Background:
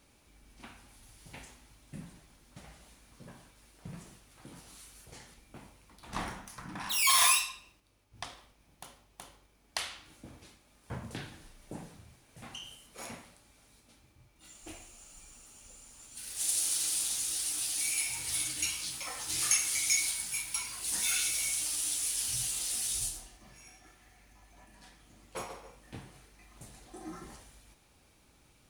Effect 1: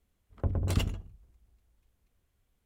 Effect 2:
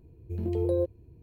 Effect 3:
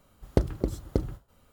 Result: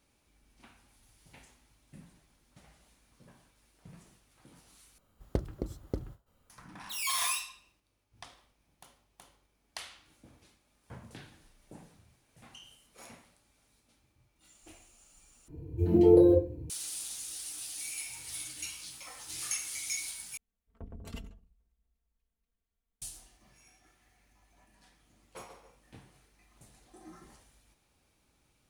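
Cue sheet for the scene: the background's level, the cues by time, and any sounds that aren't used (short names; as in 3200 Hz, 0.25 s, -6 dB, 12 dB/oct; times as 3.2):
background -7.5 dB
4.98 replace with 3 -8.5 dB
15.48 replace with 2 -1 dB + FDN reverb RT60 0.37 s, low-frequency decay 1.35×, high-frequency decay 0.7×, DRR -7.5 dB
20.37 replace with 1 -15.5 dB + comb 4.4 ms, depth 81%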